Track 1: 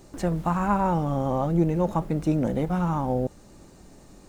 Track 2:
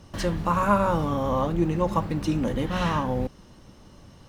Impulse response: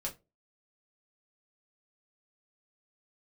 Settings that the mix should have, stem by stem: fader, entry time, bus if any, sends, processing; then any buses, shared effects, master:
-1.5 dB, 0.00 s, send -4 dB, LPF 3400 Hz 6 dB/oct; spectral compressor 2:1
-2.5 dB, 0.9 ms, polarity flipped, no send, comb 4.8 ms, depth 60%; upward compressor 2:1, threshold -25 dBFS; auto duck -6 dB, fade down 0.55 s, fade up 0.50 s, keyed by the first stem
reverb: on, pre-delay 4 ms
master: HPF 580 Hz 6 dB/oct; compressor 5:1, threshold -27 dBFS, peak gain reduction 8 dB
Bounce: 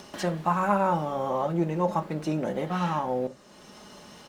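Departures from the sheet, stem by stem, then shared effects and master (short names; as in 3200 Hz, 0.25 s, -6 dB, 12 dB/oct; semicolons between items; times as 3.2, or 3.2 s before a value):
stem 1: missing spectral compressor 2:1; master: missing compressor 5:1, threshold -27 dBFS, peak gain reduction 8 dB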